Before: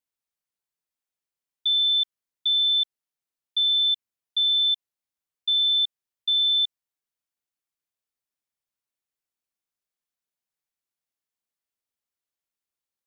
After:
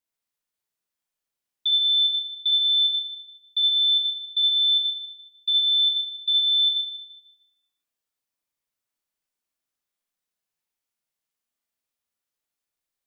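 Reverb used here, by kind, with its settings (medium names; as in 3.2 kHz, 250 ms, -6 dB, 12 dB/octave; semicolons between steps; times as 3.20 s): Schroeder reverb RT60 1 s, combs from 26 ms, DRR -1 dB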